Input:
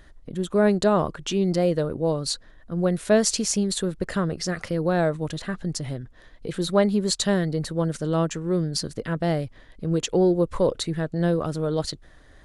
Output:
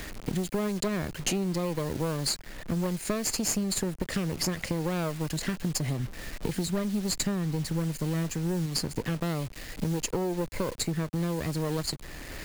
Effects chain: minimum comb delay 0.43 ms; 5.99–8.66 tone controls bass +5 dB, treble 0 dB; compressor 8:1, threshold -35 dBFS, peak gain reduction 22 dB; dynamic EQ 7300 Hz, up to +7 dB, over -56 dBFS, Q 1; bit-crush 9-bit; three-band squash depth 40%; gain +7.5 dB

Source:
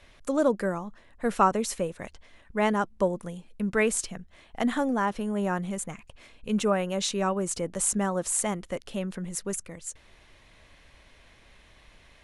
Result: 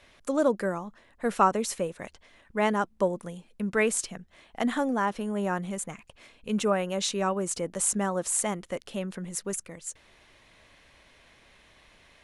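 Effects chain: low shelf 92 Hz -10 dB

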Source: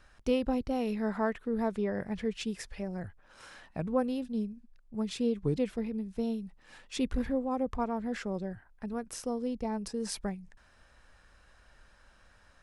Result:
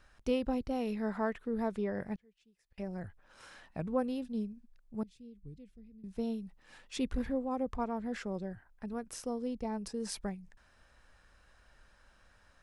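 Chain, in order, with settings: 2.15–2.78 flipped gate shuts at -34 dBFS, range -30 dB; 5.03–6.04 passive tone stack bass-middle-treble 10-0-1; gain -3 dB

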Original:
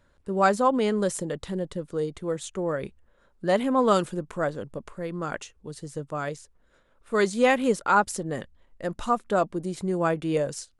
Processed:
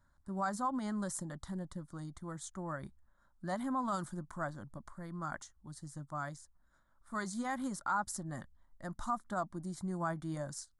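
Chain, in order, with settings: limiter -16.5 dBFS, peak gain reduction 8.5 dB; fixed phaser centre 1100 Hz, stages 4; gain -6 dB

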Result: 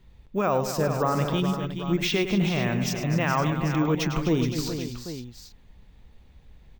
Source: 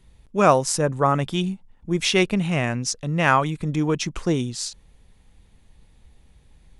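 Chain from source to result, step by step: limiter -14.5 dBFS, peak gain reduction 11 dB; air absorption 83 m; on a send: tapped delay 0.104/0.252/0.422/0.513/0.792 s -10/-11.5/-9/-12.5/-12 dB; on the sum: careless resampling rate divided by 2×, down none, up hold

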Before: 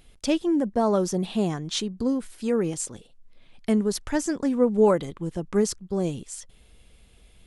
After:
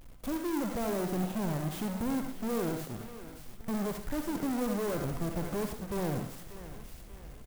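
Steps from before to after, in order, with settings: half-waves squared off; in parallel at 0 dB: vocal rider; on the sum: soft clip -22.5 dBFS, distortion -6 dB; feedback echo 0.589 s, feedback 43%, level -16.5 dB; on a send at -4.5 dB: reverb RT60 0.35 s, pre-delay 58 ms; on the sum: de-esser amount 85%; clock jitter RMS 0.058 ms; gain -8 dB

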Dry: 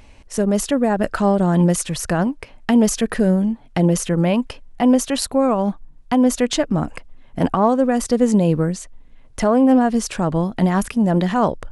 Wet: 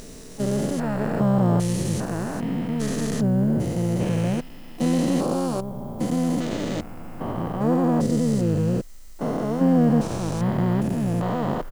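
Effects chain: stepped spectrum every 0.4 s; harmoniser -7 st -4 dB, +5 st -15 dB; added noise violet -56 dBFS; gain -2.5 dB

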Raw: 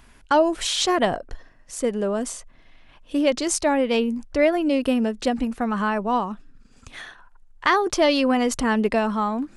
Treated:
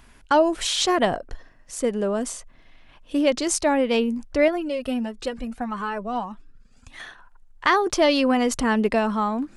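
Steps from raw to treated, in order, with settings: 4.48–7 cascading flanger rising 1.6 Hz

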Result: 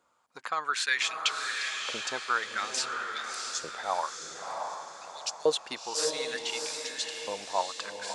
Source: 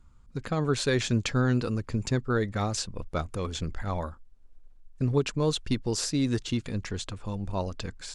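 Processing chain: LFO high-pass saw up 0.55 Hz 520–6300 Hz; on a send: diffused feedback echo 0.672 s, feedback 44%, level -4 dB

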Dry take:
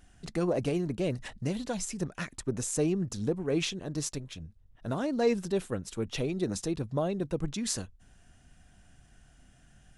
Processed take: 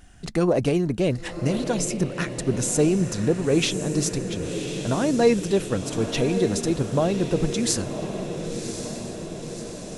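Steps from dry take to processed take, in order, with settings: diffused feedback echo 1.083 s, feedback 63%, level -8.5 dB; gain +8 dB

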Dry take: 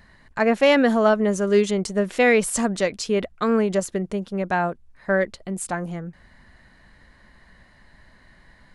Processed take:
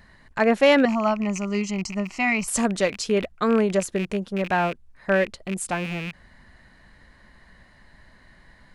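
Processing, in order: rattling part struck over -40 dBFS, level -23 dBFS; 0.85–2.48 fixed phaser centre 2400 Hz, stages 8

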